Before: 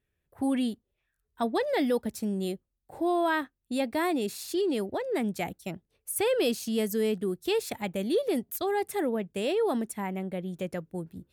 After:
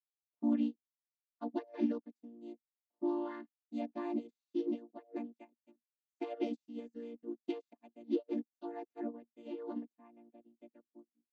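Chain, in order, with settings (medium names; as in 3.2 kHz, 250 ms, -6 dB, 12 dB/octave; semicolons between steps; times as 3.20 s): vocoder on a held chord major triad, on A#3; upward expansion 2.5:1, over -47 dBFS; trim -4 dB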